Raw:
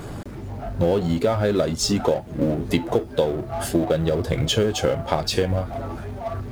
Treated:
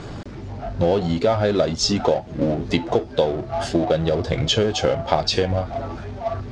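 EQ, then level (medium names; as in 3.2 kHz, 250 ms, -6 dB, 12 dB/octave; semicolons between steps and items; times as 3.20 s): low-pass 5.8 kHz 24 dB/octave; dynamic bell 720 Hz, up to +5 dB, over -34 dBFS, Q 2.4; treble shelf 3.7 kHz +7.5 dB; 0.0 dB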